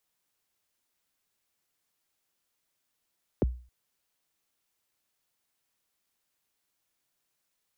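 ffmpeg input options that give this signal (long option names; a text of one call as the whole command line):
ffmpeg -f lavfi -i "aevalsrc='0.119*pow(10,-3*t/0.39)*sin(2*PI*(580*0.021/log(61/580)*(exp(log(61/580)*min(t,0.021)/0.021)-1)+61*max(t-0.021,0)))':duration=0.27:sample_rate=44100" out.wav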